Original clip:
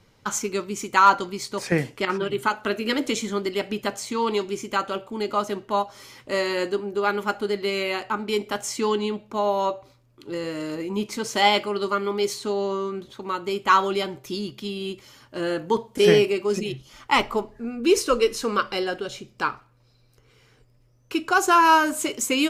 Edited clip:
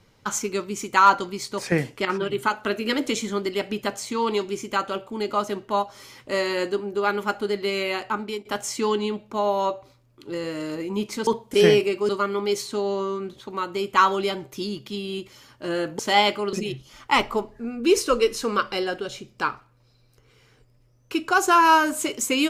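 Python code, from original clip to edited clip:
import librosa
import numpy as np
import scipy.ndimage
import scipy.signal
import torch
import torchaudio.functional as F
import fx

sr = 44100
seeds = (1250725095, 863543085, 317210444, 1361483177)

y = fx.edit(x, sr, fx.fade_out_to(start_s=8.19, length_s=0.26, floor_db=-18.0),
    fx.swap(start_s=11.27, length_s=0.54, other_s=15.71, other_length_s=0.82), tone=tone)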